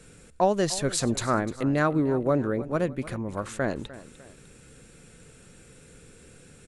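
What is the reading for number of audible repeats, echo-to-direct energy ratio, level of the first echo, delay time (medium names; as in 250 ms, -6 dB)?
2, -16.0 dB, -17.0 dB, 301 ms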